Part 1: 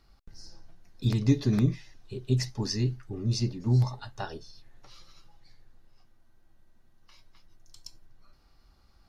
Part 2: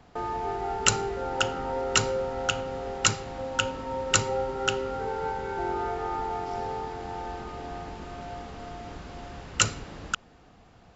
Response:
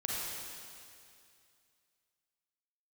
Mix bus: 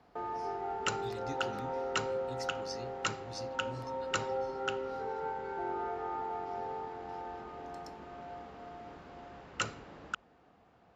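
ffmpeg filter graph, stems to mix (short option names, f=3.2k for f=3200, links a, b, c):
-filter_complex "[0:a]equalizer=f=170:t=o:w=2.2:g=-14.5,volume=-10.5dB[a];[1:a]lowpass=f=1.4k:p=1,lowshelf=f=210:g=-11,bandreject=f=50:t=h:w=6,bandreject=f=100:t=h:w=6,volume=-4dB[b];[a][b]amix=inputs=2:normalize=0,highpass=46"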